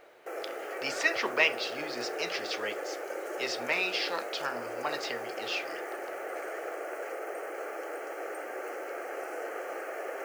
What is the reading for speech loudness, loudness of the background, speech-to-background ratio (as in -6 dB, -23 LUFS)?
-32.0 LUFS, -38.0 LUFS, 6.0 dB